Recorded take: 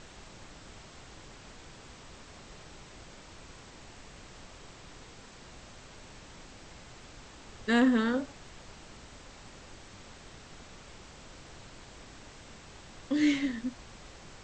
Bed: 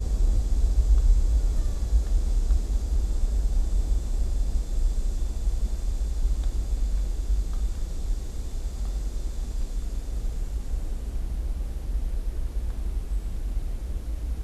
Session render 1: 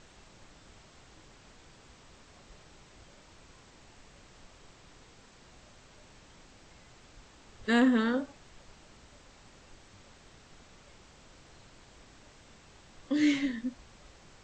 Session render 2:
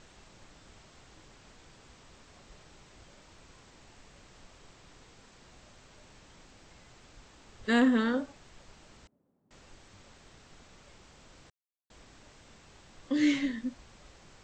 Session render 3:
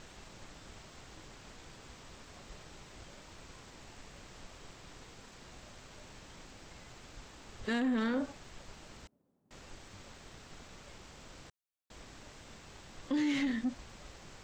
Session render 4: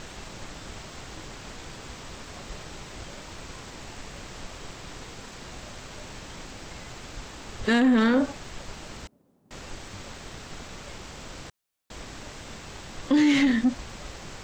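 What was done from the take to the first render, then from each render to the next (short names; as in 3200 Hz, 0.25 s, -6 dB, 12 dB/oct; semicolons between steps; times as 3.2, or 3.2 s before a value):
noise print and reduce 6 dB
9.07–9.51 ladder band-pass 250 Hz, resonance 25%; 11.5–11.9 mute
limiter -26 dBFS, peak gain reduction 11 dB; sample leveller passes 1
gain +11.5 dB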